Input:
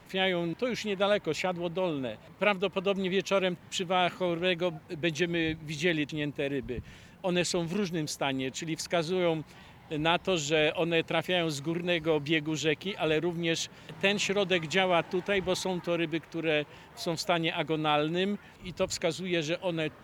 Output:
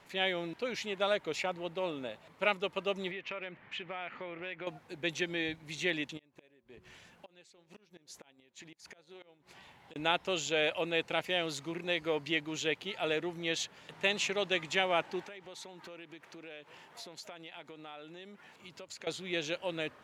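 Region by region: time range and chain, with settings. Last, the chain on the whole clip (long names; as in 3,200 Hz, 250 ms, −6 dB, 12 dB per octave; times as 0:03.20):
0:03.11–0:04.67: low-pass with resonance 2,200 Hz, resonance Q 2.3 + downward compressor 5 to 1, threshold −33 dBFS
0:06.17–0:09.96: hum removal 183.4 Hz, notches 6 + gate with flip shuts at −22 dBFS, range −27 dB + downward compressor 12 to 1, threshold −42 dBFS
0:15.24–0:19.07: high-pass filter 120 Hz + downward compressor 8 to 1, threshold −39 dBFS
whole clip: Bessel low-pass filter 11,000 Hz, order 2; low-shelf EQ 270 Hz −12 dB; level −2.5 dB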